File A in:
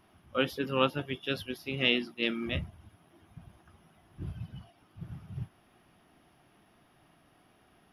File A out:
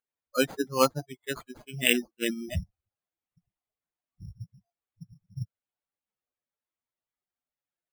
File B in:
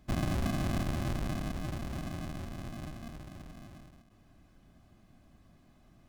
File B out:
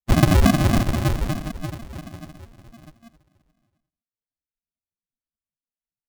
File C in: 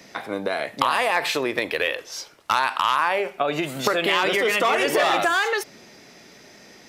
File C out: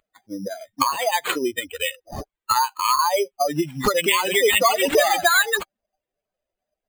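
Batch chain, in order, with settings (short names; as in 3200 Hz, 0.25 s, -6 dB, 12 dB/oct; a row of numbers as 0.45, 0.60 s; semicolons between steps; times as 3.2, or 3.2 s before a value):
per-bin expansion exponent 3; careless resampling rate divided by 8×, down none, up hold; normalise peaks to -6 dBFS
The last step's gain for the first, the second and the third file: +8.0, +22.0, +8.5 dB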